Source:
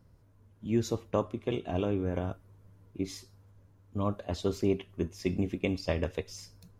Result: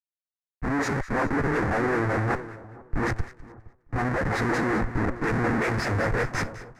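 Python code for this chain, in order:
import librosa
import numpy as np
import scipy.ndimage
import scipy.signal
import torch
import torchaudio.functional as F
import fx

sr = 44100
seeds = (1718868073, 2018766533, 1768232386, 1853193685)

p1 = fx.spec_dilate(x, sr, span_ms=60)
p2 = fx.quant_companded(p1, sr, bits=2)
p3 = p1 + (p2 * librosa.db_to_amplitude(-4.0))
p4 = fx.pitch_keep_formants(p3, sr, semitones=3.5)
p5 = fx.harmonic_tremolo(p4, sr, hz=5.4, depth_pct=100, crossover_hz=450.0)
p6 = fx.schmitt(p5, sr, flips_db=-35.0)
p7 = scipy.signal.sosfilt(scipy.signal.butter(2, 7400.0, 'lowpass', fs=sr, output='sos'), p6)
p8 = fx.high_shelf_res(p7, sr, hz=2400.0, db=-9.0, q=3.0)
p9 = fx.notch(p8, sr, hz=600.0, q=12.0)
p10 = p9 + fx.echo_split(p9, sr, split_hz=1200.0, low_ms=466, high_ms=207, feedback_pct=52, wet_db=-10.0, dry=0)
p11 = fx.band_widen(p10, sr, depth_pct=100)
y = p11 * librosa.db_to_amplitude(6.0)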